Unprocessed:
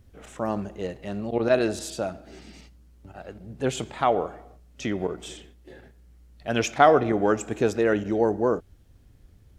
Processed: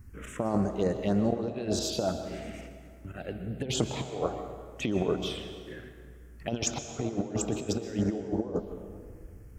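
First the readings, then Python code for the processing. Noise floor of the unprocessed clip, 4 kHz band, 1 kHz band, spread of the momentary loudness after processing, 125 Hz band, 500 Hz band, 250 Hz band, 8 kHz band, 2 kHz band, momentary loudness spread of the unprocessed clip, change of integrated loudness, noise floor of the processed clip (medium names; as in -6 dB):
-55 dBFS, +0.5 dB, -13.0 dB, 17 LU, +0.5 dB, -8.0 dB, -2.5 dB, +2.0 dB, -11.5 dB, 19 LU, -7.0 dB, -49 dBFS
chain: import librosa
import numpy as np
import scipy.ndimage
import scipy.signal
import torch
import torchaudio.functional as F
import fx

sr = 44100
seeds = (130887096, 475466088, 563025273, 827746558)

y = fx.over_compress(x, sr, threshold_db=-29.0, ratio=-0.5)
y = fx.env_phaser(y, sr, low_hz=550.0, high_hz=3100.0, full_db=-23.0)
y = fx.rev_plate(y, sr, seeds[0], rt60_s=2.0, hf_ratio=0.65, predelay_ms=105, drr_db=8.0)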